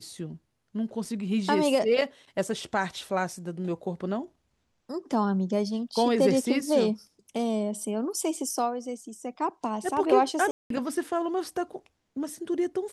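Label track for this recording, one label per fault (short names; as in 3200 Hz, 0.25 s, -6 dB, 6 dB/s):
1.050000	1.050000	gap 3.5 ms
10.510000	10.700000	gap 0.193 s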